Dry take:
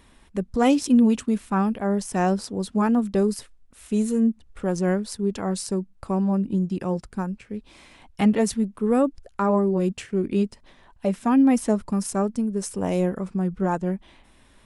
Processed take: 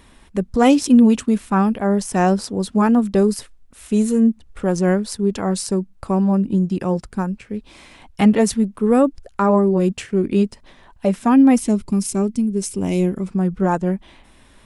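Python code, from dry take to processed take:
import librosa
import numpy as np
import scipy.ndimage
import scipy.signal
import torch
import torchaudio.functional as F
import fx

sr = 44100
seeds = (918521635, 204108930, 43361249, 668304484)

y = fx.spec_box(x, sr, start_s=11.59, length_s=1.69, low_hz=430.0, high_hz=2000.0, gain_db=-9)
y = y * librosa.db_to_amplitude(5.5)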